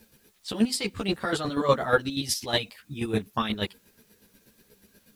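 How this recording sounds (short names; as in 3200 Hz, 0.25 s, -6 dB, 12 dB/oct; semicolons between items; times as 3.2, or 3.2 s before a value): chopped level 8.3 Hz, depth 65%, duty 30%; a quantiser's noise floor 12-bit, dither triangular; a shimmering, thickened sound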